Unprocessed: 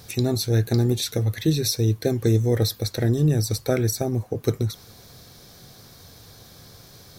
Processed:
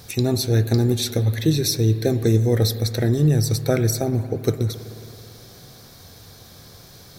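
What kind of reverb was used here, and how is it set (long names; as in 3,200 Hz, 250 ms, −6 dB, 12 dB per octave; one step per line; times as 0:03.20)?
spring reverb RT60 2.9 s, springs 54 ms, chirp 45 ms, DRR 11.5 dB
level +2 dB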